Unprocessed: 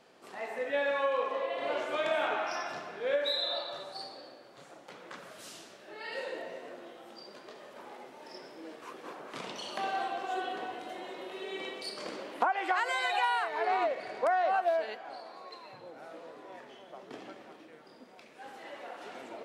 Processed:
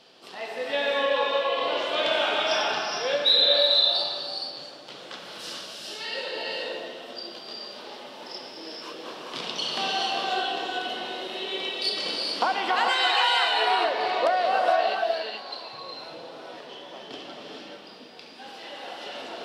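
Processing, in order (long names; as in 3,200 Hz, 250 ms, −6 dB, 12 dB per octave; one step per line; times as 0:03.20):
flat-topped bell 3,900 Hz +10.5 dB 1.2 octaves
reverb whose tail is shaped and stops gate 470 ms rising, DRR −0.5 dB
level +3 dB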